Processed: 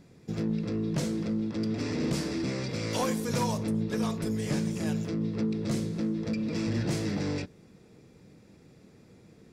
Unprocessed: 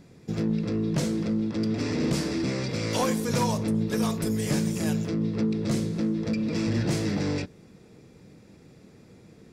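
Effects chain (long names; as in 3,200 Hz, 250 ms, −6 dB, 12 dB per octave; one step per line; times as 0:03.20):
0:03.81–0:04.96: high-shelf EQ 10,000 Hz −12 dB
level −3.5 dB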